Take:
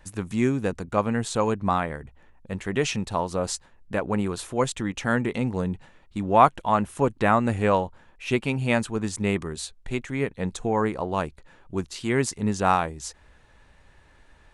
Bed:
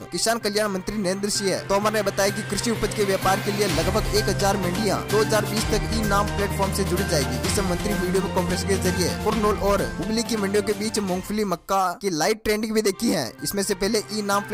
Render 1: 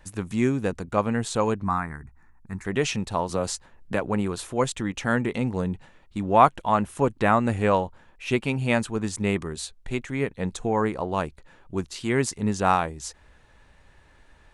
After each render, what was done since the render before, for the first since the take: 1.64–2.65 fixed phaser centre 1300 Hz, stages 4; 3.29–4.08 three-band squash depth 40%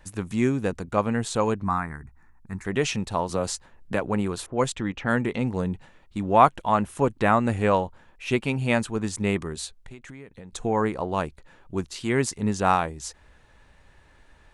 4.46–5.45 low-pass opened by the level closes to 610 Hz, open at -20 dBFS; 9.77–10.53 compressor 12:1, threshold -38 dBFS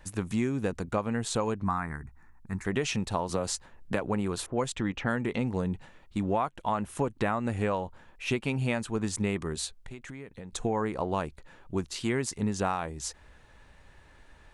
compressor 16:1, threshold -24 dBFS, peak gain reduction 15.5 dB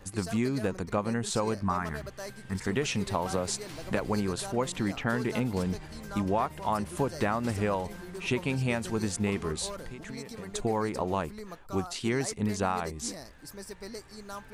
add bed -19.5 dB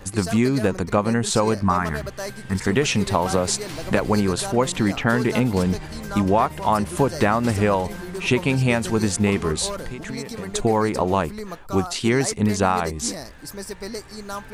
gain +9.5 dB

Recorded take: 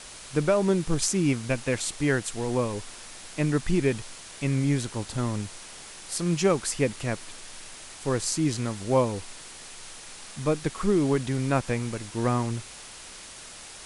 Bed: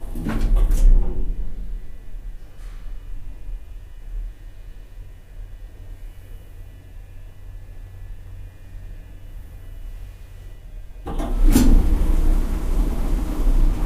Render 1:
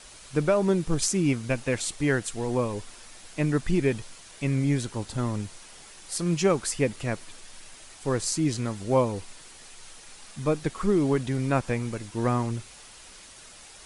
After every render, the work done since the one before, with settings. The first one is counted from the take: denoiser 6 dB, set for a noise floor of -44 dBFS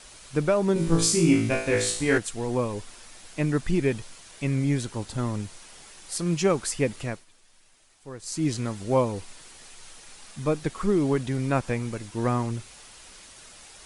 0.74–2.18 flutter echo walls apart 3.1 m, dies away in 0.54 s; 7.02–8.45 dip -13.5 dB, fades 0.23 s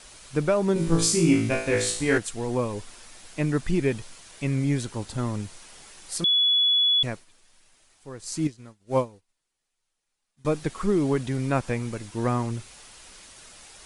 6.24–7.03 bleep 3400 Hz -17.5 dBFS; 8.47–10.45 upward expander 2.5:1, over -41 dBFS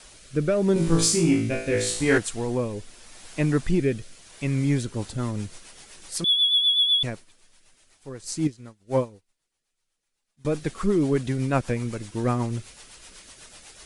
in parallel at -7 dB: soft clip -19 dBFS, distortion -14 dB; on the sum: rotary speaker horn 0.8 Hz, later 8 Hz, at 4.6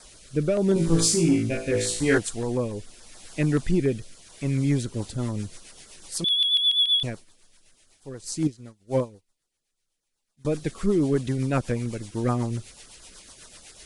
LFO notch saw down 7 Hz 720–3100 Hz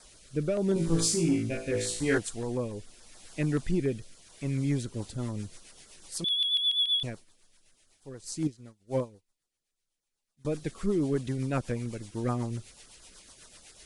gain -5.5 dB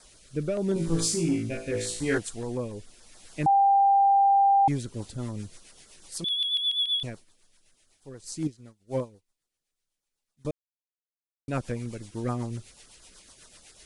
3.46–4.68 bleep 793 Hz -16.5 dBFS; 10.51–11.48 mute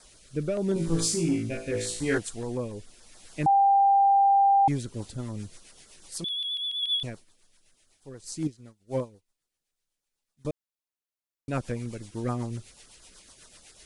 5.2–6.83 compressor, threshold -29 dBFS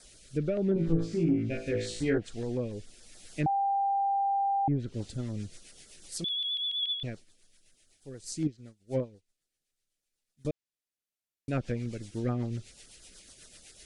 treble ducked by the level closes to 840 Hz, closed at -20 dBFS; bell 1000 Hz -11.5 dB 0.66 oct

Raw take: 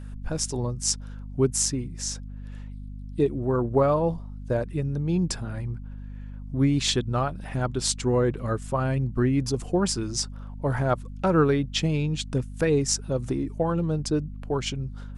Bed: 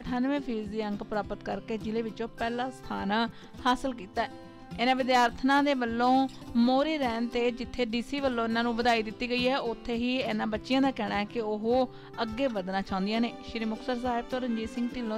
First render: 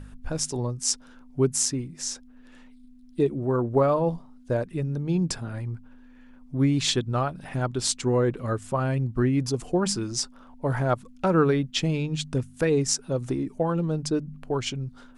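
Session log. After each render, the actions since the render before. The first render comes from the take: de-hum 50 Hz, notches 4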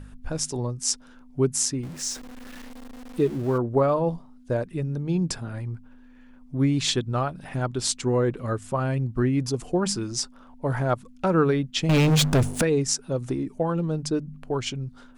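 1.83–3.58 zero-crossing step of -37.5 dBFS; 11.89–12.62 sample leveller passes 5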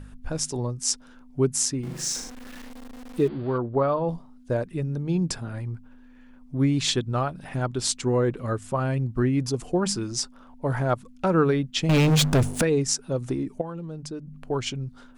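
1.8–2.3 flutter echo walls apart 6.6 m, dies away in 0.58 s; 3.28–4.09 rippled Chebyshev low-pass 4700 Hz, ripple 3 dB; 13.61–14.43 compressor 2:1, threshold -39 dBFS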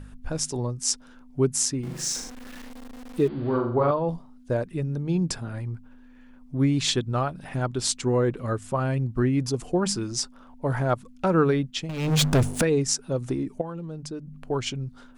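3.33–3.91 flutter echo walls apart 7.3 m, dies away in 0.58 s; 11.65–12.23 dip -14.5 dB, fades 0.27 s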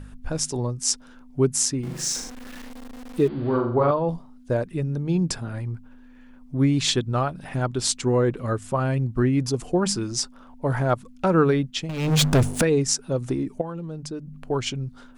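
gain +2 dB

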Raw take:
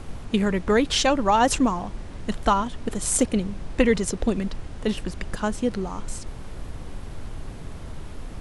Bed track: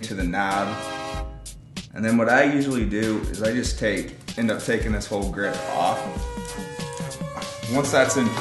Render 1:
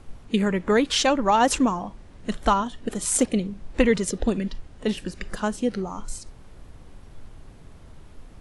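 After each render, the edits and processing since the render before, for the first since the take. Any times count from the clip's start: noise print and reduce 10 dB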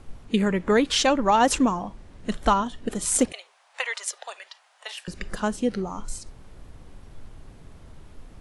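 3.32–5.08 steep high-pass 700 Hz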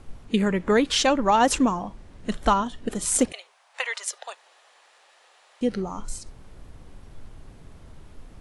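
4.35–5.61 room tone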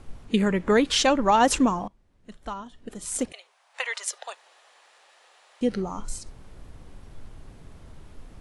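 1.88–4.01 fade in quadratic, from -19 dB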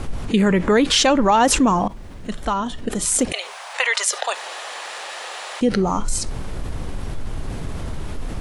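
in parallel at -1 dB: limiter -18 dBFS, peak gain reduction 10 dB; on the sum: fast leveller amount 50%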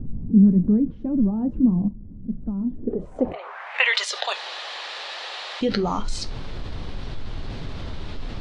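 low-pass sweep 210 Hz -> 4100 Hz, 2.61–4.02; flange 1.7 Hz, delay 6.8 ms, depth 4.8 ms, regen -59%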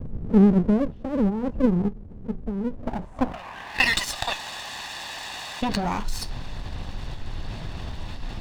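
minimum comb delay 1.1 ms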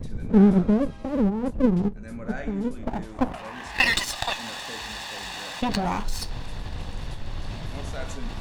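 add bed track -19.5 dB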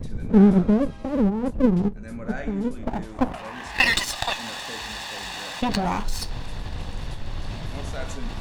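gain +1.5 dB

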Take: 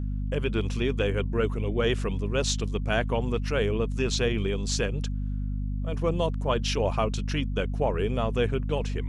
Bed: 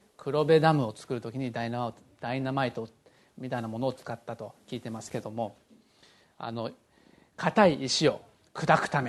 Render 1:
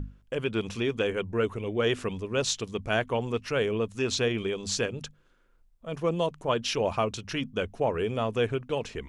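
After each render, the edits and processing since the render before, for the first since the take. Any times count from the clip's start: notches 50/100/150/200/250 Hz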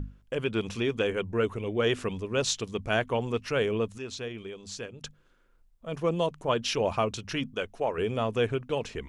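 3.98–5.04 gain -10 dB; 7.54–7.98 bell 110 Hz -10.5 dB 2.9 oct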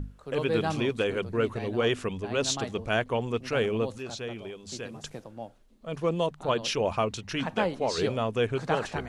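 add bed -7.5 dB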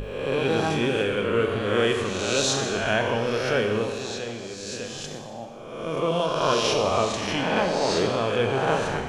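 spectral swells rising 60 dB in 1.25 s; Schroeder reverb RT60 1.4 s, combs from 30 ms, DRR 4.5 dB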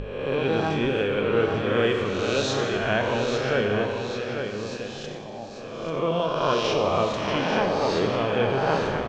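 air absorption 140 m; echo 0.841 s -7 dB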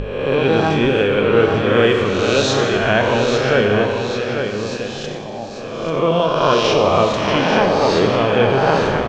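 gain +8.5 dB; limiter -2 dBFS, peak gain reduction 2 dB

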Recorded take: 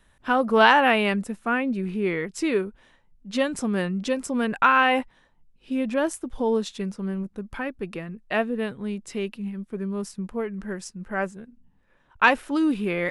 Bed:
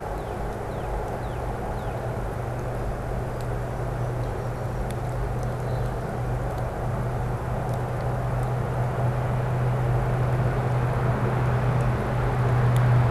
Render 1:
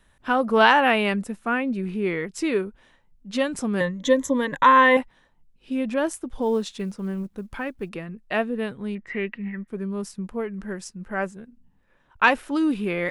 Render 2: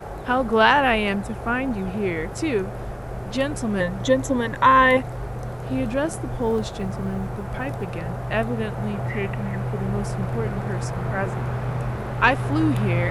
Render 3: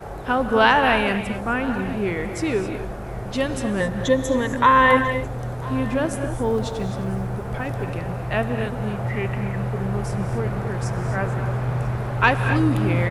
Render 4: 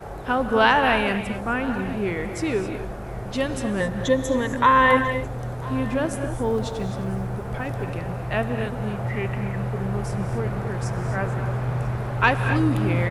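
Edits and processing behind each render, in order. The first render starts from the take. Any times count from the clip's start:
3.8–4.97 ripple EQ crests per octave 1.1, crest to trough 16 dB; 6.42–7.89 companded quantiser 8-bit; 8.95–9.68 synth low-pass 1900 Hz, resonance Q 14
add bed -3.5 dB
echo 0.995 s -21 dB; non-linear reverb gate 0.29 s rising, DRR 7.5 dB
gain -1.5 dB

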